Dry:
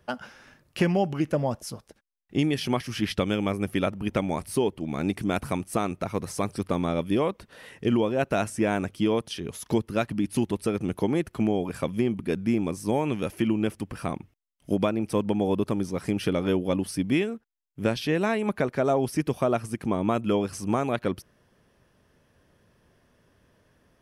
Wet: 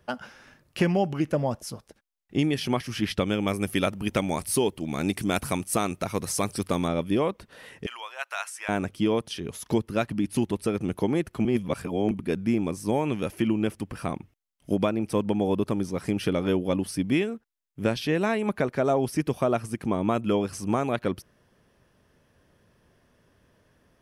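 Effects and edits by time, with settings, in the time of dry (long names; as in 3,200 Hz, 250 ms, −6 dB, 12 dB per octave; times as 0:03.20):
0:03.47–0:06.88: high-shelf EQ 3,200 Hz +10 dB
0:07.86–0:08.69: high-pass filter 980 Hz 24 dB per octave
0:11.45–0:12.11: reverse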